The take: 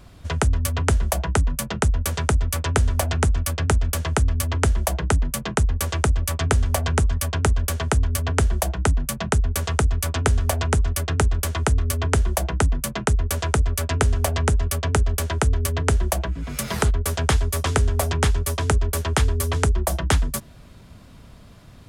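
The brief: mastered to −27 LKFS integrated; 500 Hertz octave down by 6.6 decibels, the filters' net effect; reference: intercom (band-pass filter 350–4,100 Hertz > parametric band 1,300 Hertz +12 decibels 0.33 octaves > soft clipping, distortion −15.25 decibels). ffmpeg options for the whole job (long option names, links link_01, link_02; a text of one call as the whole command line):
ffmpeg -i in.wav -af "highpass=350,lowpass=4100,equalizer=frequency=500:width_type=o:gain=-7.5,equalizer=frequency=1300:width_type=o:width=0.33:gain=12,asoftclip=threshold=-7.5dB,volume=1dB" out.wav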